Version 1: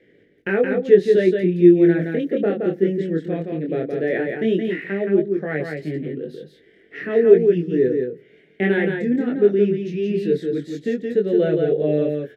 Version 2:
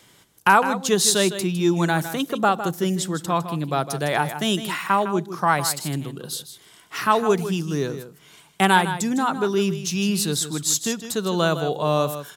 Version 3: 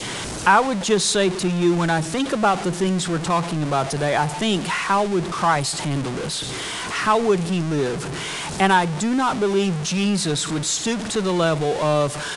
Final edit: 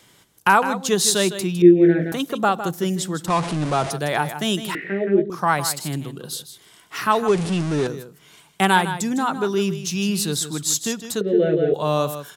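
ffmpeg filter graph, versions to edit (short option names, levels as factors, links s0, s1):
-filter_complex "[0:a]asplit=3[s0][s1][s2];[2:a]asplit=2[s3][s4];[1:a]asplit=6[s5][s6][s7][s8][s9][s10];[s5]atrim=end=1.622[s11];[s0]atrim=start=1.618:end=2.122[s12];[s6]atrim=start=2.118:end=3.282[s13];[s3]atrim=start=3.278:end=3.912[s14];[s7]atrim=start=3.908:end=4.752[s15];[s1]atrim=start=4.748:end=5.302[s16];[s8]atrim=start=5.298:end=7.282[s17];[s4]atrim=start=7.278:end=7.872[s18];[s9]atrim=start=7.868:end=11.212[s19];[s2]atrim=start=11.208:end=11.742[s20];[s10]atrim=start=11.738[s21];[s11][s12]acrossfade=d=0.004:c1=hsin:c2=hsin[s22];[s22][s13]acrossfade=d=0.004:c1=hsin:c2=hsin[s23];[s23][s14]acrossfade=d=0.004:c1=hsin:c2=hsin[s24];[s24][s15]acrossfade=d=0.004:c1=hsin:c2=hsin[s25];[s25][s16]acrossfade=d=0.004:c1=hsin:c2=hsin[s26];[s26][s17]acrossfade=d=0.004:c1=hsin:c2=hsin[s27];[s27][s18]acrossfade=d=0.004:c1=hsin:c2=hsin[s28];[s28][s19]acrossfade=d=0.004:c1=hsin:c2=hsin[s29];[s29][s20]acrossfade=d=0.004:c1=hsin:c2=hsin[s30];[s30][s21]acrossfade=d=0.004:c1=hsin:c2=hsin"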